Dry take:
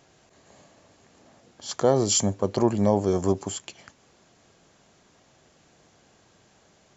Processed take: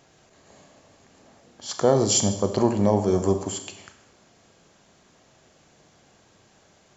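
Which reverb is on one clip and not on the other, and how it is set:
four-comb reverb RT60 0.86 s, combs from 29 ms, DRR 7.5 dB
level +1 dB

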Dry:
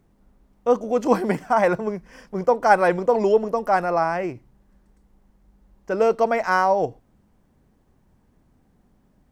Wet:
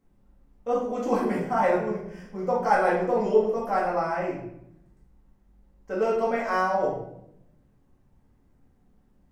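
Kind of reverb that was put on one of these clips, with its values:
rectangular room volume 190 cubic metres, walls mixed, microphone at 2.1 metres
level −12 dB

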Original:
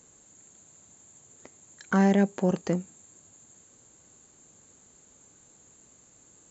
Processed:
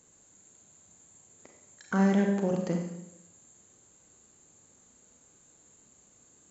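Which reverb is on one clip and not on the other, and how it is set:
four-comb reverb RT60 0.87 s, combs from 31 ms, DRR 2.5 dB
level −5 dB

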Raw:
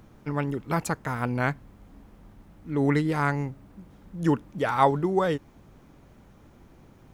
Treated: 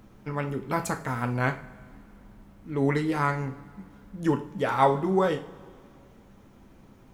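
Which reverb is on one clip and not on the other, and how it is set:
coupled-rooms reverb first 0.36 s, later 2.3 s, from −20 dB, DRR 4.5 dB
level −1.5 dB

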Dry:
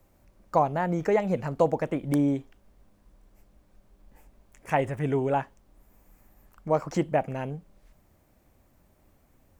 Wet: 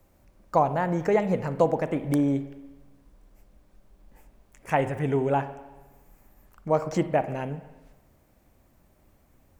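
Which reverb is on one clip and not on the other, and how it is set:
spring reverb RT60 1.2 s, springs 43/58 ms, chirp 45 ms, DRR 12 dB
level +1 dB

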